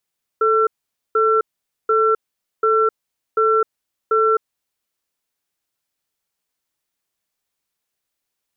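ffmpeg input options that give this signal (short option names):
-f lavfi -i "aevalsrc='0.168*(sin(2*PI*439*t)+sin(2*PI*1350*t))*clip(min(mod(t,0.74),0.26-mod(t,0.74))/0.005,0,1)':d=4.23:s=44100"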